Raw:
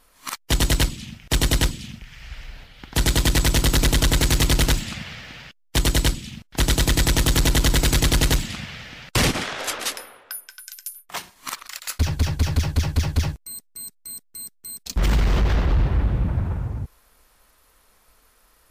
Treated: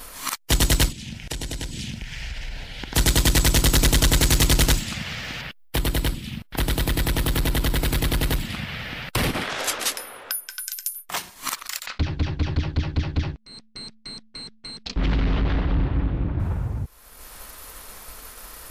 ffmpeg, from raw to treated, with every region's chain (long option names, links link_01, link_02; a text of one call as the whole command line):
ffmpeg -i in.wav -filter_complex "[0:a]asettb=1/sr,asplit=3[link_01][link_02][link_03];[link_01]atrim=end=0.924[link_04];[link_02]atrim=start=0.92:end=2.94,asetpts=PTS-STARTPTS,afade=type=in:duration=0.004:curve=qsin,afade=type=out:start_time=2.016:duration=0.004:curve=qsin,lowpass=10000,equalizer=frequency=1200:width=6.9:gain=-14,acompressor=threshold=-33dB:ratio=10:attack=3.2:release=140:knee=1:detection=peak[link_05];[link_03]atrim=start=2.936[link_06];[link_04][link_05]acrossfade=duration=0.004:curve1=hsin:curve2=qsin[link_07];[link_07][link_06]acrossfade=duration=0.004:curve1=qsin:curve2=hsin,asettb=1/sr,asplit=3[link_08][link_09][link_10];[link_08]atrim=end=5.414[link_11];[link_09]atrim=start=5.41:end=9.5,asetpts=PTS-STARTPTS,afade=type=in:duration=0.004:curve=qsin,afade=type=out:start_time=4.086:duration=0.004:curve=qsin,equalizer=frequency=6700:width_type=o:width=0.94:gain=-12.5,acompressor=threshold=-20dB:ratio=3:attack=3.2:release=140:knee=1:detection=peak[link_12];[link_10]atrim=start=9.496[link_13];[link_11][link_12]acrossfade=duration=0.004:curve1=hsin:curve2=qsin[link_14];[link_14][link_13]acrossfade=duration=0.004:curve1=qsin:curve2=hsin,asettb=1/sr,asplit=3[link_15][link_16][link_17];[link_15]atrim=end=11.864[link_18];[link_16]atrim=start=11.86:end=16.4,asetpts=PTS-STARTPTS,afade=type=in:duration=0.004:curve=qsin,afade=type=out:start_time=4.536:duration=0.004:curve=qsin,lowpass=frequency=4100:width=0.5412,lowpass=frequency=4100:width=1.3066,tremolo=f=220:d=0.667[link_19];[link_17]atrim=start=16.396[link_20];[link_18][link_19]acrossfade=duration=0.004:curve1=hsin:curve2=qsin[link_21];[link_21][link_20]acrossfade=duration=0.004:curve1=qsin:curve2=hsin,agate=range=-33dB:threshold=-54dB:ratio=3:detection=peak,highshelf=frequency=6700:gain=4.5,acompressor=mode=upward:threshold=-23dB:ratio=2.5" out.wav